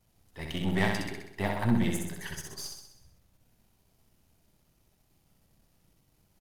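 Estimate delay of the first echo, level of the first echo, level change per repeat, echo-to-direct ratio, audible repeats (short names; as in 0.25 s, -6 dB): 64 ms, -4.0 dB, -5.0 dB, -2.5 dB, 7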